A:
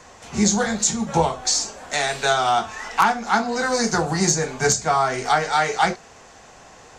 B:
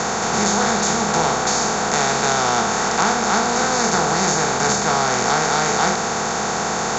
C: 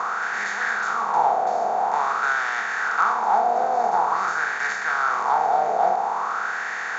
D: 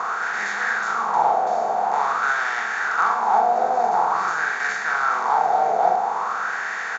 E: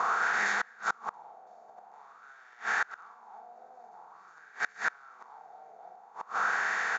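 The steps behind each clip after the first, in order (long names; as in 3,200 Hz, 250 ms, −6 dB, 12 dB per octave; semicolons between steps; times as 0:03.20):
compressor on every frequency bin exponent 0.2; Chebyshev low-pass filter 7,200 Hz, order 6; level −7 dB
LFO wah 0.48 Hz 680–1,800 Hz, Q 5; level +5.5 dB
double-tracking delay 43 ms −6 dB
gate with flip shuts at −14 dBFS, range −29 dB; level −3 dB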